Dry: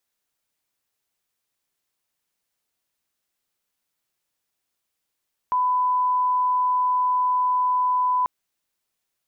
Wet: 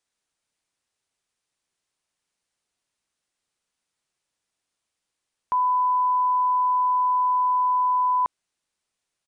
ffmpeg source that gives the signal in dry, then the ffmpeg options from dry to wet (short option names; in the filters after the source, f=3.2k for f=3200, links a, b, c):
-f lavfi -i "sine=f=1000:d=2.74:r=44100,volume=0.06dB"
-af "aresample=22050,aresample=44100"